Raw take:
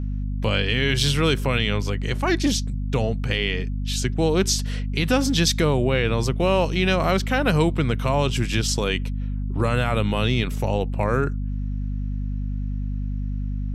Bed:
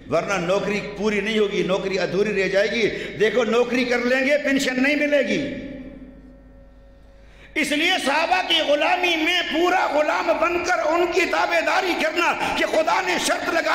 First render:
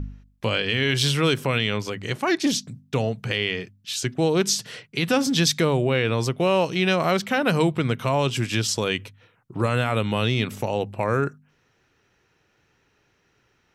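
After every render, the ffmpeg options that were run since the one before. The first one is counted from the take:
-af "bandreject=f=50:t=h:w=4,bandreject=f=100:t=h:w=4,bandreject=f=150:t=h:w=4,bandreject=f=200:t=h:w=4,bandreject=f=250:t=h:w=4"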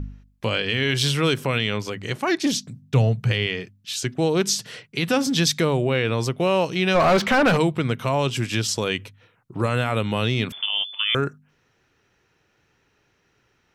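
-filter_complex "[0:a]asettb=1/sr,asplit=3[a][b][c];[a]atrim=end=2.824[d];[b]atrim=start=2.82:end=3.47,asetpts=PTS-STARTPTS,afade=t=in:d=0.004:c=qsin,afade=t=out:st=0.646:d=0.004:c=qsin,equalizer=f=120:t=o:w=0.77:g=10.5[e];[c]atrim=start=3.466[f];[d][e]acrossfade=d=0.004:c1=hsin:c2=qsin[g];[g][f]acrossfade=d=0.004:c1=qsin:c2=hsin,asplit=3[h][i][j];[h]afade=t=out:st=6.94:d=0.02[k];[i]asplit=2[l][m];[m]highpass=f=720:p=1,volume=26dB,asoftclip=type=tanh:threshold=-9dB[n];[l][n]amix=inputs=2:normalize=0,lowpass=f=1.7k:p=1,volume=-6dB,afade=t=in:st=6.94:d=0.02,afade=t=out:st=7.56:d=0.02[o];[j]afade=t=in:st=7.56:d=0.02[p];[k][o][p]amix=inputs=3:normalize=0,asettb=1/sr,asplit=3[q][r][s];[q]atrim=end=10.524[t];[r]atrim=start=10.52:end=11.15,asetpts=PTS-STARTPTS,afade=t=in:d=0.004:c=qsin,afade=t=out:st=0.626:d=0.004:c=qsin,lowpass=f=3.1k:t=q:w=0.5098,lowpass=f=3.1k:t=q:w=0.6013,lowpass=f=3.1k:t=q:w=0.9,lowpass=f=3.1k:t=q:w=2.563,afreqshift=-3600[u];[s]atrim=start=11.146[v];[t][u]acrossfade=d=0.004:c1=hsin:c2=qsin[w];[w][v]acrossfade=d=0.004:c1=qsin:c2=hsin"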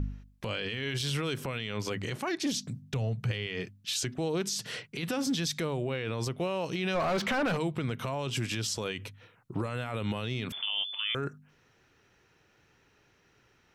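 -af "acompressor=threshold=-25dB:ratio=6,alimiter=limit=-23dB:level=0:latency=1:release=19"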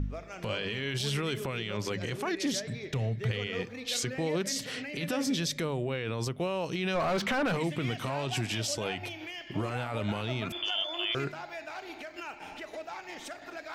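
-filter_complex "[1:a]volume=-21.5dB[a];[0:a][a]amix=inputs=2:normalize=0"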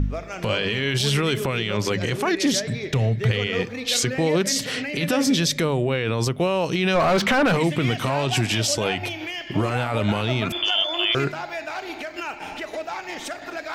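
-af "volume=10dB"

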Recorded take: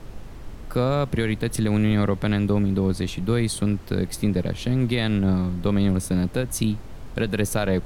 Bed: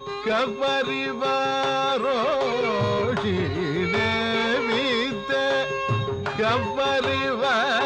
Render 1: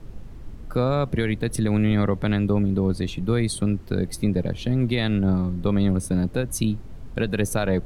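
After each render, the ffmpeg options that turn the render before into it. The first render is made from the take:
-af "afftdn=nr=8:nf=-38"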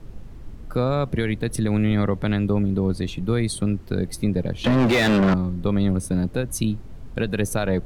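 -filter_complex "[0:a]asettb=1/sr,asplit=3[a][b][c];[a]atrim=end=4.644[d];[b]atrim=start=4.64:end=5.34,asetpts=PTS-STARTPTS,afade=t=in:d=0.004:c=qsin,afade=t=out:st=0.696:d=0.004:c=qsin,asplit=2[e][f];[f]highpass=f=720:p=1,volume=33dB,asoftclip=type=tanh:threshold=-10dB[g];[e][g]amix=inputs=2:normalize=0,lowpass=f=2.3k:p=1,volume=-6dB[h];[c]atrim=start=5.336[i];[d][h]acrossfade=d=0.004:c1=hsin:c2=qsin[j];[j][i]acrossfade=d=0.004:c1=qsin:c2=hsin"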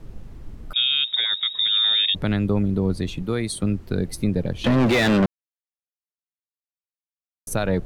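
-filter_complex "[0:a]asettb=1/sr,asplit=3[a][b][c];[a]atrim=end=0.734[d];[b]atrim=start=0.73:end=2.15,asetpts=PTS-STARTPTS,afade=t=in:d=0.004:c=qsin,afade=t=out:st=1.416:d=0.004:c=qsin,lowpass=f=3.2k:t=q:w=0.5098,lowpass=f=3.2k:t=q:w=0.6013,lowpass=f=3.2k:t=q:w=0.9,lowpass=f=3.2k:t=q:w=2.563,afreqshift=-3800[e];[c]atrim=start=2.146[f];[d][e]acrossfade=d=0.004:c1=hsin:c2=qsin[g];[g][f]acrossfade=d=0.004:c1=qsin:c2=hsin,asettb=1/sr,asplit=3[h][i][j];[h]atrim=end=3.224[k];[i]atrim=start=3.22:end=3.63,asetpts=PTS-STARTPTS,afade=t=in:d=0.004:c=qsin,afade=t=out:st=0.406:d=0.004:c=qsin,lowshelf=f=150:g=-9.5[l];[j]atrim=start=3.626[m];[k][l]acrossfade=d=0.004:c1=hsin:c2=qsin[n];[n][m]acrossfade=d=0.004:c1=qsin:c2=hsin,asplit=3[o][p][q];[o]atrim=end=5.26,asetpts=PTS-STARTPTS,afade=t=out:st=5.256:d=0.004:c=hsin[r];[p]atrim=start=5.26:end=7.47,asetpts=PTS-STARTPTS,volume=0[s];[q]atrim=start=7.47,asetpts=PTS-STARTPTS,afade=t=in:d=0.004:c=hsin[t];[r][s][t]concat=n=3:v=0:a=1"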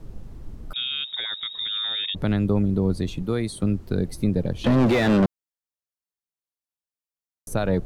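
-filter_complex "[0:a]acrossover=split=3100[a][b];[b]acompressor=threshold=-34dB:ratio=4:attack=1:release=60[c];[a][c]amix=inputs=2:normalize=0,equalizer=f=2.2k:t=o:w=1.5:g=-4.5"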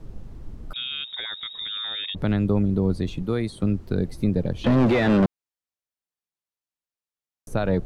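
-filter_complex "[0:a]highshelf=f=8.6k:g=-6.5,acrossover=split=4000[a][b];[b]acompressor=threshold=-45dB:ratio=4:attack=1:release=60[c];[a][c]amix=inputs=2:normalize=0"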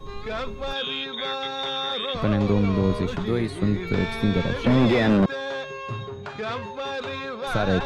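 -filter_complex "[1:a]volume=-8dB[a];[0:a][a]amix=inputs=2:normalize=0"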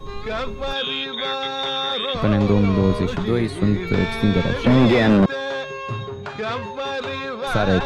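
-af "volume=4dB"

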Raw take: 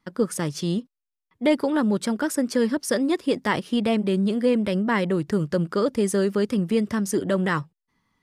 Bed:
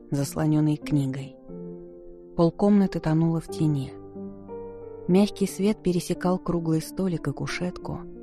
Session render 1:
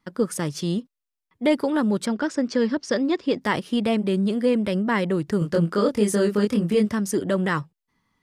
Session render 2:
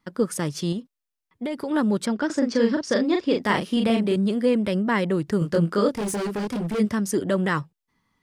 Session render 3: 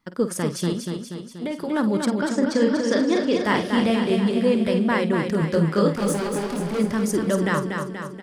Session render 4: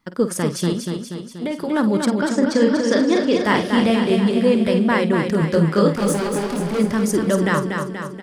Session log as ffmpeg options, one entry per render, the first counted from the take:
-filter_complex "[0:a]asettb=1/sr,asplit=3[a][b][c];[a]atrim=end=2.064[d];[b]atrim=start=2.06:end=3.41,asetpts=PTS-STARTPTS,afade=t=in:d=0.004:c=qsin,afade=t=out:st=1.346:d=0.004:c=qsin,lowpass=f=6.2k:w=0.5412,lowpass=f=6.2k:w=1.3066[e];[c]atrim=start=3.406[f];[d][e]acrossfade=d=0.004:c1=hsin:c2=qsin[g];[g][f]acrossfade=d=0.004:c1=qsin:c2=hsin,asettb=1/sr,asplit=3[h][i][j];[h]atrim=end=5.394[k];[i]atrim=start=5.39:end=6.89,asetpts=PTS-STARTPTS,afade=t=in:d=0.004:c=qsin,afade=t=out:st=1.496:d=0.004:c=qsin,asplit=2[l][m];[m]adelay=24,volume=-2.5dB[n];[l][n]amix=inputs=2:normalize=0,atrim=end_sample=66150[o];[j]atrim=start=6.886[p];[k][o]acrossfade=d=0.004:c1=hsin:c2=qsin[q];[q][p]acrossfade=d=0.004:c1=qsin:c2=hsin"
-filter_complex "[0:a]asettb=1/sr,asplit=3[a][b][c];[a]atrim=end=0.724[d];[b]atrim=start=0.72:end=1.71,asetpts=PTS-STARTPTS,afade=t=in:d=0.004:c=qsin,afade=t=out:st=0.986:d=0.004:c=qsin,acompressor=threshold=-25dB:ratio=6:attack=3.2:release=140:knee=1:detection=peak[e];[c]atrim=start=1.706[f];[d][e]acrossfade=d=0.004:c1=hsin:c2=qsin[g];[g][f]acrossfade=d=0.004:c1=qsin:c2=hsin,asettb=1/sr,asplit=3[h][i][j];[h]atrim=end=2.264[k];[i]atrim=start=2.26:end=4.16,asetpts=PTS-STARTPTS,afade=t=in:d=0.004:c=qsin,afade=t=out:st=1.896:d=0.004:c=qsin,asplit=2[l][m];[m]adelay=39,volume=-4dB[n];[l][n]amix=inputs=2:normalize=0,atrim=end_sample=83790[o];[j]atrim=start=4.156[p];[k][o]acrossfade=d=0.004:c1=hsin:c2=qsin[q];[q][p]acrossfade=d=0.004:c1=qsin:c2=hsin,asplit=3[r][s][t];[r]afade=t=out:st=5.94:d=0.02[u];[s]asoftclip=type=hard:threshold=-24.5dB,afade=t=in:st=5.94:d=0.02,afade=t=out:st=6.78:d=0.02[v];[t]afade=t=in:st=6.78:d=0.02[w];[u][v][w]amix=inputs=3:normalize=0"
-filter_complex "[0:a]asplit=2[a][b];[b]adelay=50,volume=-11.5dB[c];[a][c]amix=inputs=2:normalize=0,asplit=2[d][e];[e]aecho=0:1:240|480|720|960|1200|1440|1680|1920:0.531|0.303|0.172|0.0983|0.056|0.0319|0.0182|0.0104[f];[d][f]amix=inputs=2:normalize=0"
-af "volume=3.5dB"

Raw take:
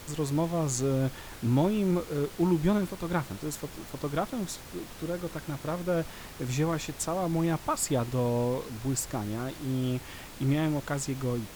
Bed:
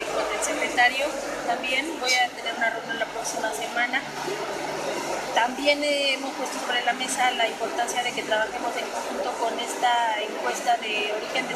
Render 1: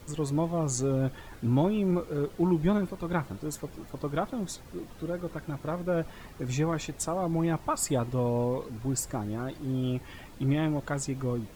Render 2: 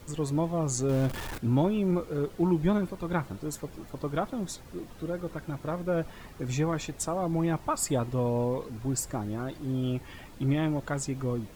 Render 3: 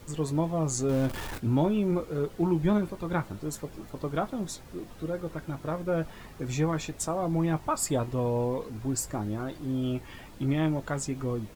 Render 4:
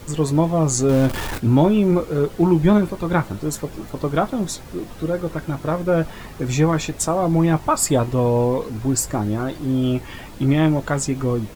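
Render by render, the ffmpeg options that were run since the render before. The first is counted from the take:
-af "afftdn=nr=10:nf=-45"
-filter_complex "[0:a]asettb=1/sr,asplit=3[a][b][c];[a]atrim=end=0.894[d];[b]atrim=start=0.89:end=1.38,asetpts=PTS-STARTPTS,afade=t=in:d=0.004:c=qsin,afade=t=out:st=0.486:d=0.004:c=qsin,aeval=exprs='val(0)+0.5*0.0211*sgn(val(0))':c=same[e];[c]atrim=start=1.376[f];[d][e]acrossfade=d=0.004:c1=hsin:c2=qsin[g];[g][f]acrossfade=d=0.004:c1=qsin:c2=hsin"
-filter_complex "[0:a]asplit=2[a][b];[b]adelay=19,volume=-11.5dB[c];[a][c]amix=inputs=2:normalize=0"
-af "volume=10dB"

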